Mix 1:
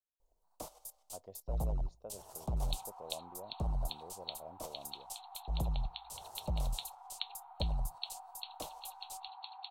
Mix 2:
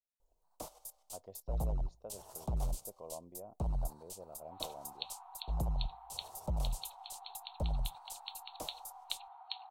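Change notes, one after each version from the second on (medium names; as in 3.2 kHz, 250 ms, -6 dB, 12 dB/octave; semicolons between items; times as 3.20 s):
second sound: entry +1.90 s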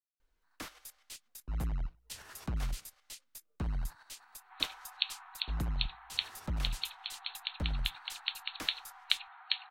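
speech: muted; master: remove FFT filter 160 Hz 0 dB, 280 Hz -7 dB, 620 Hz +8 dB, 920 Hz +3 dB, 1.7 kHz -25 dB, 2.8 kHz -14 dB, 8.3 kHz +2 dB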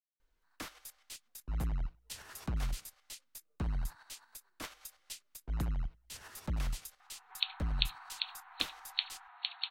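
second sound: entry +2.80 s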